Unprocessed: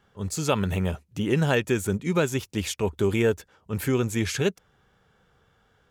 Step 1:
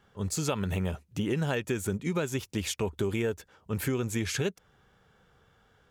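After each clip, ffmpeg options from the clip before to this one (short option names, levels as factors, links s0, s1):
-af "acompressor=threshold=0.0447:ratio=4"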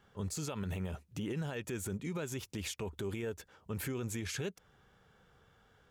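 -af "alimiter=level_in=1.58:limit=0.0631:level=0:latency=1:release=84,volume=0.631,volume=0.794"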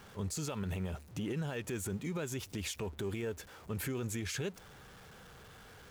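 -af "aeval=exprs='val(0)+0.5*0.00282*sgn(val(0))':c=same"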